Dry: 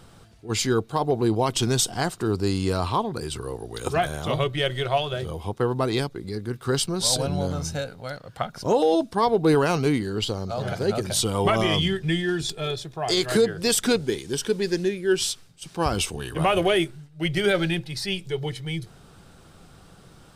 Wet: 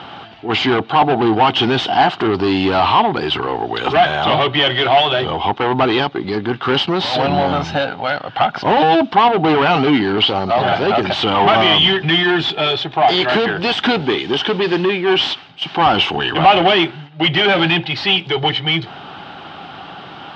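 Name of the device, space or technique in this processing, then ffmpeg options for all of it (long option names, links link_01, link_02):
overdrive pedal into a guitar cabinet: -filter_complex "[0:a]asplit=2[link_01][link_02];[link_02]highpass=frequency=720:poles=1,volume=25dB,asoftclip=type=tanh:threshold=-10dB[link_03];[link_01][link_03]amix=inputs=2:normalize=0,lowpass=frequency=2800:poles=1,volume=-6dB,highpass=76,equalizer=frequency=280:width_type=q:width=4:gain=4,equalizer=frequency=490:width_type=q:width=4:gain=-7,equalizer=frequency=800:width_type=q:width=4:gain=9,equalizer=frequency=3000:width_type=q:width=4:gain=8,lowpass=frequency=3900:width=0.5412,lowpass=frequency=3900:width=1.3066,volume=3dB"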